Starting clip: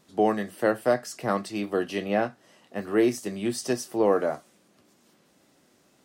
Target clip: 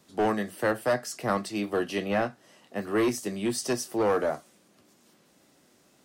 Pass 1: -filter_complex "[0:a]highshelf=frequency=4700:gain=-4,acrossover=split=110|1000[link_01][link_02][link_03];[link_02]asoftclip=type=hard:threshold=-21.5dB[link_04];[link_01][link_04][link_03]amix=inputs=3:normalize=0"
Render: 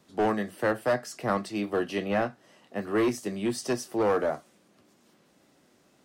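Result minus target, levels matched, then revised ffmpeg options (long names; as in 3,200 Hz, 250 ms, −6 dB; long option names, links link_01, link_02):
8,000 Hz band −4.5 dB
-filter_complex "[0:a]highshelf=frequency=4700:gain=2.5,acrossover=split=110|1000[link_01][link_02][link_03];[link_02]asoftclip=type=hard:threshold=-21.5dB[link_04];[link_01][link_04][link_03]amix=inputs=3:normalize=0"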